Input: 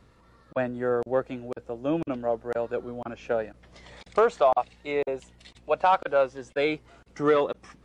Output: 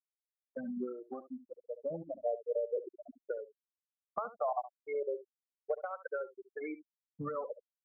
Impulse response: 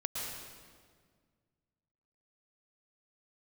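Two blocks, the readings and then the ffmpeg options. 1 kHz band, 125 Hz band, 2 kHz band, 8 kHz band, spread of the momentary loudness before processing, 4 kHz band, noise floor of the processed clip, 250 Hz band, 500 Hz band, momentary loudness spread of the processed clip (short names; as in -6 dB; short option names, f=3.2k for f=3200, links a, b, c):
-15.0 dB, -13.5 dB, -16.5 dB, n/a, 14 LU, under -40 dB, under -85 dBFS, -12.0 dB, -12.0 dB, 12 LU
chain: -filter_complex "[0:a]aeval=exprs='val(0)+0.00501*(sin(2*PI*50*n/s)+sin(2*PI*2*50*n/s)/2+sin(2*PI*3*50*n/s)/3+sin(2*PI*4*50*n/s)/4+sin(2*PI*5*50*n/s)/5)':c=same,afftfilt=real='re*gte(hypot(re,im),0.158)':imag='im*gte(hypot(re,im),0.158)':win_size=1024:overlap=0.75,acompressor=threshold=-30dB:ratio=6,asplit=2[a][b];[b]aecho=0:1:70:0.188[c];[a][c]amix=inputs=2:normalize=0,asplit=2[d][e];[e]afreqshift=-0.35[f];[d][f]amix=inputs=2:normalize=1"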